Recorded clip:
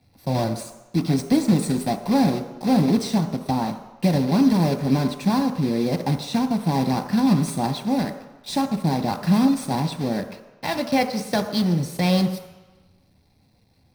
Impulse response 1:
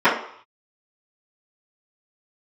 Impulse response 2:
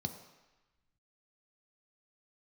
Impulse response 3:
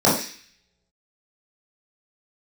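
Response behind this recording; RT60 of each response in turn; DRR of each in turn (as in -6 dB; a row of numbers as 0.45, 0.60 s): 2; 0.60, 1.1, 0.40 s; -16.0, 5.5, -8.5 dB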